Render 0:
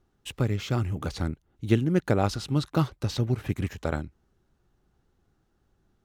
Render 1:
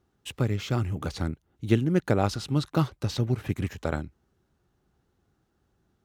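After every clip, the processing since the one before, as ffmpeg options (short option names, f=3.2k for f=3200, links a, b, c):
-af "highpass=54"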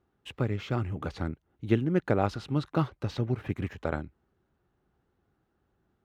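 -af "bass=f=250:g=-3,treble=f=4k:g=-14,volume=-1dB"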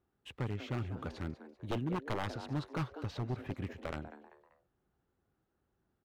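-filter_complex "[0:a]asplit=4[a][b][c][d];[b]adelay=194,afreqshift=140,volume=-15dB[e];[c]adelay=388,afreqshift=280,volume=-23.4dB[f];[d]adelay=582,afreqshift=420,volume=-31.8dB[g];[a][e][f][g]amix=inputs=4:normalize=0,aeval=exprs='0.0841*(abs(mod(val(0)/0.0841+3,4)-2)-1)':c=same,volume=-6.5dB"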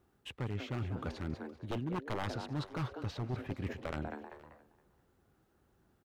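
-af "areverse,acompressor=threshold=-45dB:ratio=4,areverse,aecho=1:1:470:0.0841,volume=9dB"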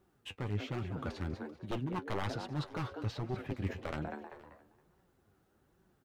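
-af "flanger=delay=5.2:depth=5.7:regen=45:speed=1.2:shape=sinusoidal,volume=4.5dB"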